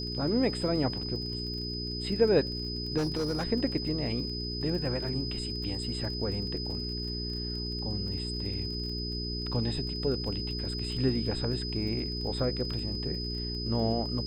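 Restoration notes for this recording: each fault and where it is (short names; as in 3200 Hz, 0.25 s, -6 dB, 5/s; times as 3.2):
crackle 25/s -38 dBFS
hum 60 Hz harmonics 7 -37 dBFS
tone 5000 Hz -36 dBFS
2.97–3.45 clipped -26 dBFS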